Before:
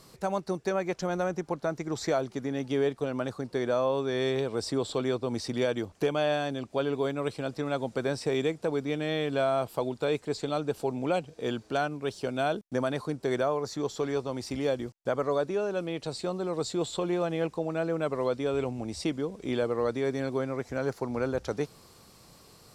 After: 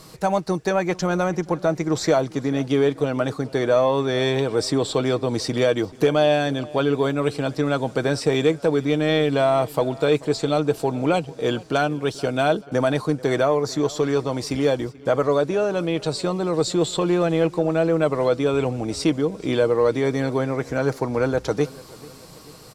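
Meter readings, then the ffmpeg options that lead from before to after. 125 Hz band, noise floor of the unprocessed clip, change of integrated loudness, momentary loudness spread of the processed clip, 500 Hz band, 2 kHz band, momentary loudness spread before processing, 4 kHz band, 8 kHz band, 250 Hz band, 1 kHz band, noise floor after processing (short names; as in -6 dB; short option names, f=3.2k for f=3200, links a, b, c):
+10.5 dB, -56 dBFS, +8.5 dB, 5 LU, +8.5 dB, +8.5 dB, 5 LU, +9.0 dB, +9.0 dB, +9.0 dB, +8.0 dB, -43 dBFS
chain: -filter_complex "[0:a]aecho=1:1:6.4:0.32,asplit=2[a][b];[b]asoftclip=type=tanh:threshold=-23.5dB,volume=-7.5dB[c];[a][c]amix=inputs=2:normalize=0,asplit=2[d][e];[e]adelay=436,lowpass=f=4.5k:p=1,volume=-21dB,asplit=2[f][g];[g]adelay=436,lowpass=f=4.5k:p=1,volume=0.5,asplit=2[h][i];[i]adelay=436,lowpass=f=4.5k:p=1,volume=0.5,asplit=2[j][k];[k]adelay=436,lowpass=f=4.5k:p=1,volume=0.5[l];[d][f][h][j][l]amix=inputs=5:normalize=0,volume=6dB"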